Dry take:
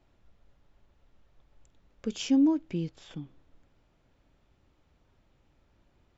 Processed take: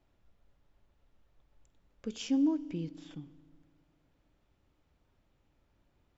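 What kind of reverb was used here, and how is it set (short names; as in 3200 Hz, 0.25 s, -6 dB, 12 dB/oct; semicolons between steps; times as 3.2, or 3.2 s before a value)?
FDN reverb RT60 1.7 s, low-frequency decay 1.3×, high-frequency decay 0.85×, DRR 17.5 dB; gain -5.5 dB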